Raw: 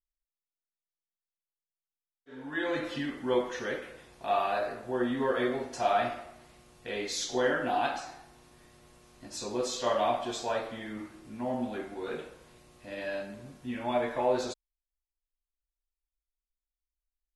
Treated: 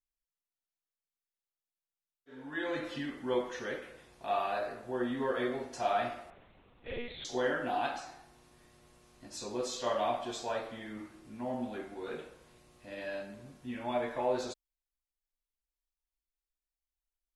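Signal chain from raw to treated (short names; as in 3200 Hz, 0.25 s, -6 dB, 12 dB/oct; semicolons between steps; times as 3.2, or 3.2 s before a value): 6.3–7.25 monotone LPC vocoder at 8 kHz 240 Hz; gain -4 dB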